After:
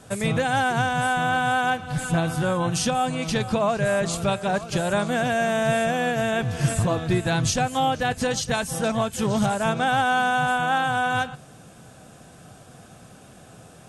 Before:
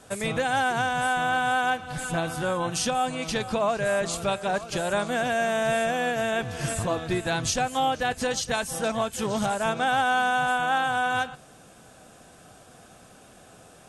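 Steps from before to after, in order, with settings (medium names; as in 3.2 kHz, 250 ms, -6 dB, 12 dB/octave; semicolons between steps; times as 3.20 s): peaking EQ 130 Hz +8.5 dB 1.5 oct; trim +1.5 dB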